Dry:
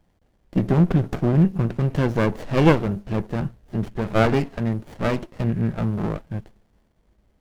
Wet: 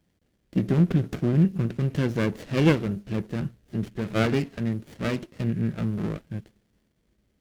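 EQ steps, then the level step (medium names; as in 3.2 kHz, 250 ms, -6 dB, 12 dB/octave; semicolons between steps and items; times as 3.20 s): high-pass 140 Hz 6 dB/octave; peaking EQ 840 Hz -11 dB 1.5 oct; 0.0 dB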